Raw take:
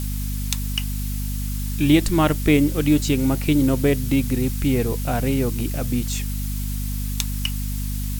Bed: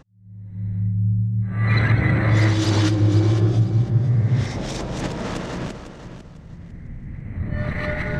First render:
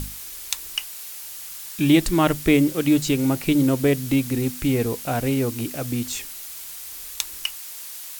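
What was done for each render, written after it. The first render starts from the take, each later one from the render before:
mains-hum notches 50/100/150/200/250 Hz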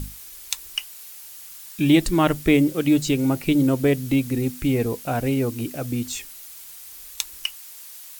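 broadband denoise 6 dB, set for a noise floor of −37 dBFS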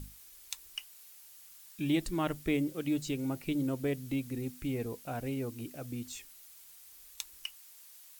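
level −13.5 dB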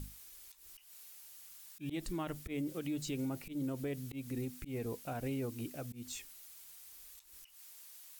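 volume swells 169 ms
brickwall limiter −30.5 dBFS, peak gain reduction 10.5 dB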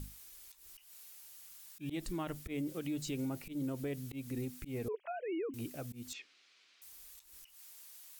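0:04.88–0:05.54: three sine waves on the formant tracks
0:06.13–0:06.82: loudspeaker in its box 310–4,600 Hz, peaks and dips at 620 Hz −5 dB, 890 Hz −8 dB, 2,400 Hz +4 dB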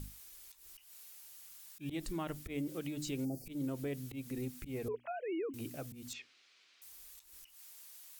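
mains-hum notches 60/120/180/240/300 Hz
0:03.24–0:03.47: gain on a spectral selection 810–4,400 Hz −29 dB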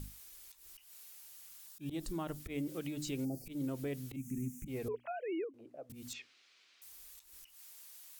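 0:01.67–0:02.40: parametric band 2,200 Hz −7 dB 0.8 octaves
0:04.16–0:04.68: drawn EQ curve 110 Hz 0 dB, 200 Hz +9 dB, 730 Hz −28 dB, 2,300 Hz −7 dB, 4,300 Hz −25 dB, 6,300 Hz +5 dB, 12,000 Hz −1 dB
0:05.44–0:05.90: resonant band-pass 580 Hz, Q 2.6

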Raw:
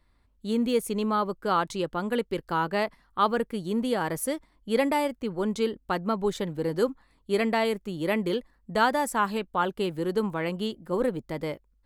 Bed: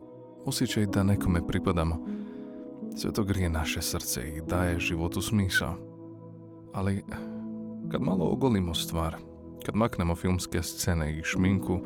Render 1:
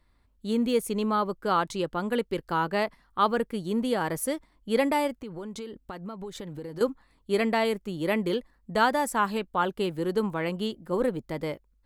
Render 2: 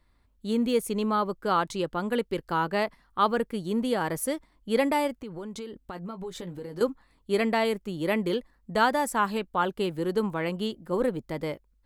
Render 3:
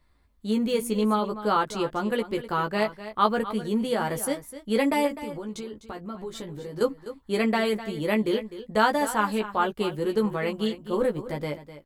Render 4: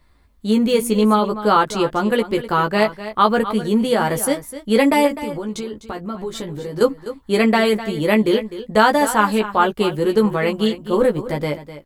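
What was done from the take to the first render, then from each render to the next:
0:05.21–0:06.81: downward compressor 8 to 1, threshold −34 dBFS
0:05.93–0:06.83: double-tracking delay 17 ms −9 dB
double-tracking delay 14 ms −4 dB; single-tap delay 253 ms −13.5 dB
level +8.5 dB; brickwall limiter −2 dBFS, peak gain reduction 2.5 dB

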